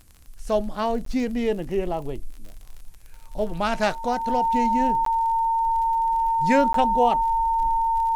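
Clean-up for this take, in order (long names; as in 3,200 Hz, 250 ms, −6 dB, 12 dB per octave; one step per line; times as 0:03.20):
click removal
notch filter 910 Hz, Q 30
repair the gap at 0:01.05/0:05.05/0:06.73, 13 ms
downward expander −32 dBFS, range −21 dB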